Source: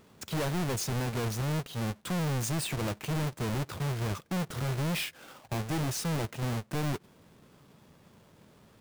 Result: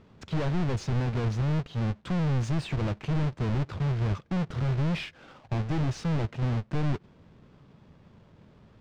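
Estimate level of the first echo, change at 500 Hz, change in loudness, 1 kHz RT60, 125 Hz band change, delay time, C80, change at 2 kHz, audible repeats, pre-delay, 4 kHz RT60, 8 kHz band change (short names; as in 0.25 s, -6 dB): none, +0.5 dB, +3.0 dB, none, +5.0 dB, none, none, -1.5 dB, none, none, none, under -10 dB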